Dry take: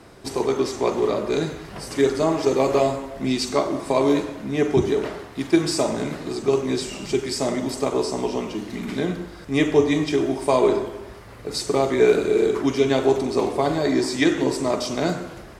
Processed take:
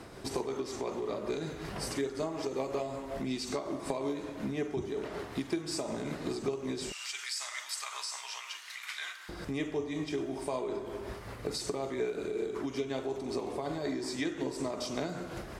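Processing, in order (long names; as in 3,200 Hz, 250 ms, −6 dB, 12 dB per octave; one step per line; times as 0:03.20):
0:06.92–0:09.29: high-pass filter 1,300 Hz 24 dB per octave
downward compressor 6 to 1, threshold −31 dBFS, peak gain reduction 18.5 dB
amplitude tremolo 5.4 Hz, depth 34%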